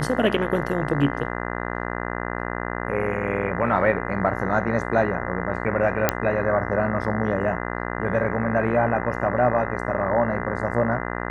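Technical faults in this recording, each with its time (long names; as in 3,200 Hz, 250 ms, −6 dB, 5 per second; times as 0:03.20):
mains buzz 60 Hz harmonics 34 −29 dBFS
0:06.09: click −2 dBFS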